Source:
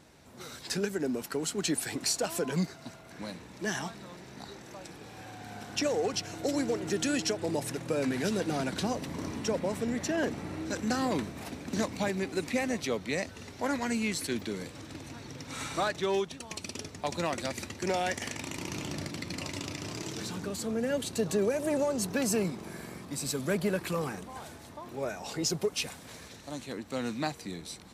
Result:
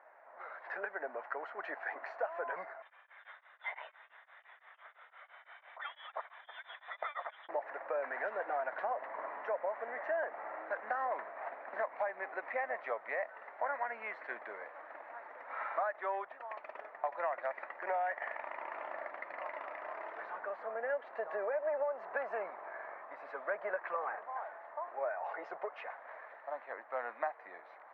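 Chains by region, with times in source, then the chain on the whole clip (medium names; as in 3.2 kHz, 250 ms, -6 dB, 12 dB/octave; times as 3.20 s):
2.82–7.49 s: frequency inversion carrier 3.8 kHz + tremolo of two beating tones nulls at 5.9 Hz
whole clip: elliptic band-pass 620–1900 Hz, stop band 80 dB; tilt EQ -2 dB/octave; compression 4:1, threshold -37 dBFS; trim +4.5 dB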